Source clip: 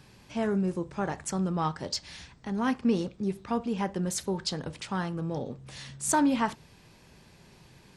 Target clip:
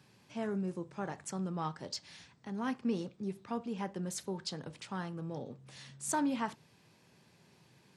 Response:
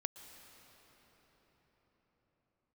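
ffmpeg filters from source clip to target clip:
-af "highpass=frequency=100:width=0.5412,highpass=frequency=100:width=1.3066,volume=-8dB"

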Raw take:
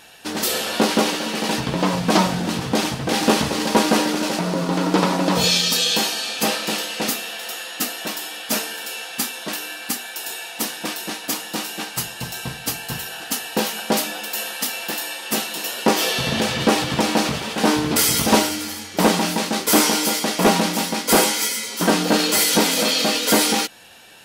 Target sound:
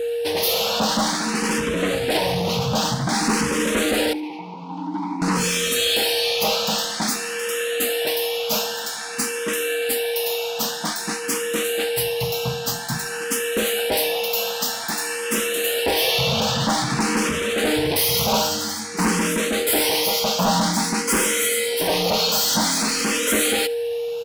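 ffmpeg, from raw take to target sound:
ffmpeg -i in.wav -filter_complex "[0:a]equalizer=frequency=340:width=2.5:gain=-4.5,asplit=2[link_01][link_02];[link_02]alimiter=limit=-14dB:level=0:latency=1,volume=-3dB[link_03];[link_01][link_03]amix=inputs=2:normalize=0,aeval=exprs='val(0)+0.0708*sin(2*PI*470*n/s)':channel_layout=same,asettb=1/sr,asplit=3[link_04][link_05][link_06];[link_04]atrim=end=4.134[link_07];[link_05]atrim=start=4.13:end=5.22,asetpts=PTS-STARTPTS,afade=type=in:duration=0.004:curve=qsin,afade=type=out:start_time=1.086:duration=0.004:curve=qsin,asplit=3[link_08][link_09][link_10];[link_08]bandpass=frequency=300:width_type=q:width=8,volume=0dB[link_11];[link_09]bandpass=frequency=870:width_type=q:width=8,volume=-6dB[link_12];[link_10]bandpass=frequency=2240:width_type=q:width=8,volume=-9dB[link_13];[link_11][link_12][link_13]amix=inputs=3:normalize=0[link_14];[link_06]atrim=start=5.216[link_15];[link_07][link_14]acrossfade=duration=0.004:curve1=hsin:curve2=qsin[link_16];[link_16][link_15]acrossfade=duration=0.004:curve1=qsin:curve2=hsin,asoftclip=type=tanh:threshold=-15.5dB,asplit=2[link_17][link_18];[link_18]aecho=0:1:73|146|219:0.0891|0.0321|0.0116[link_19];[link_17][link_19]amix=inputs=2:normalize=0,asplit=2[link_20][link_21];[link_21]afreqshift=0.51[link_22];[link_20][link_22]amix=inputs=2:normalize=1,volume=2.5dB" out.wav

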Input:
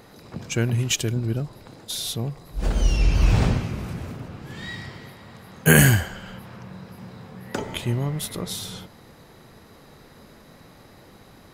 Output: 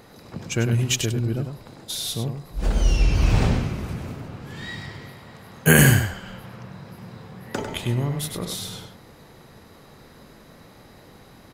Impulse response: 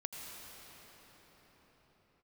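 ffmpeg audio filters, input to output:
-filter_complex "[0:a]asplit=2[link_01][link_02];[link_02]adelay=99.13,volume=-7dB,highshelf=frequency=4000:gain=-2.23[link_03];[link_01][link_03]amix=inputs=2:normalize=0"

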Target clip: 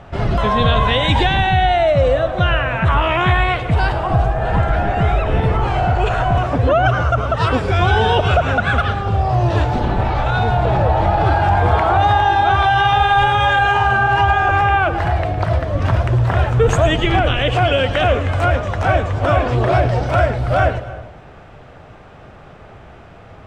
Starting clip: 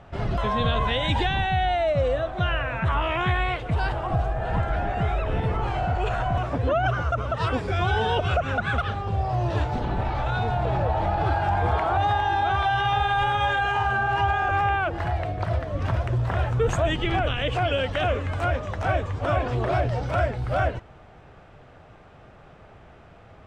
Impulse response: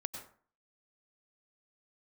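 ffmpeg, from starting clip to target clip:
-filter_complex "[0:a]asplit=2[link_01][link_02];[1:a]atrim=start_sample=2205,asetrate=28665,aresample=44100,adelay=109[link_03];[link_02][link_03]afir=irnorm=-1:irlink=0,volume=-14dB[link_04];[link_01][link_04]amix=inputs=2:normalize=0,volume=8.5dB"

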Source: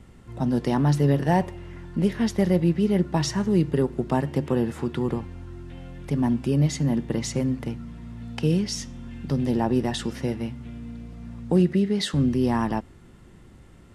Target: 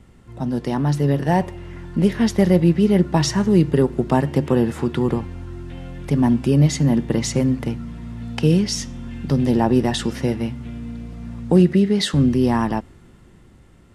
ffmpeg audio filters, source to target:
ffmpeg -i in.wav -af "dynaudnorm=framelen=170:gausssize=17:maxgain=6.5dB" out.wav

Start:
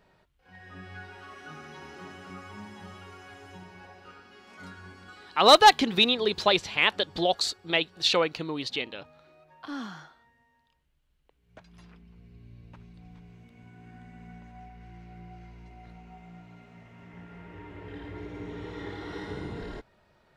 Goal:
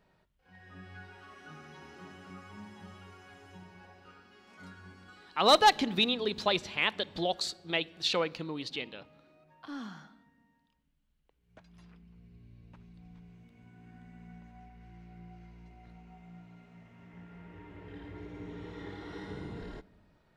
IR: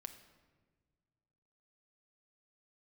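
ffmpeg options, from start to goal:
-filter_complex "[0:a]asplit=2[link_01][link_02];[link_02]equalizer=frequency=220:width_type=o:width=0.77:gain=8[link_03];[1:a]atrim=start_sample=2205,lowshelf=frequency=230:gain=6.5[link_04];[link_03][link_04]afir=irnorm=-1:irlink=0,volume=-7dB[link_05];[link_01][link_05]amix=inputs=2:normalize=0,volume=-8dB"

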